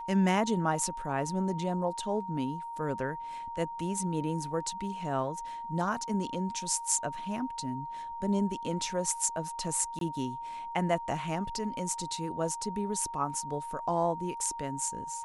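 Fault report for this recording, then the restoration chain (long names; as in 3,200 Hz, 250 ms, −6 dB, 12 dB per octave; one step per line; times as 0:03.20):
whistle 930 Hz −37 dBFS
0:09.99–0:10.01: drop-out 22 ms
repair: notch filter 930 Hz, Q 30
repair the gap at 0:09.99, 22 ms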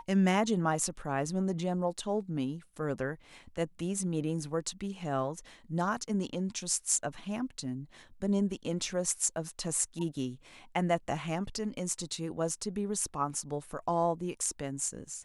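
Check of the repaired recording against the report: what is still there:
none of them is left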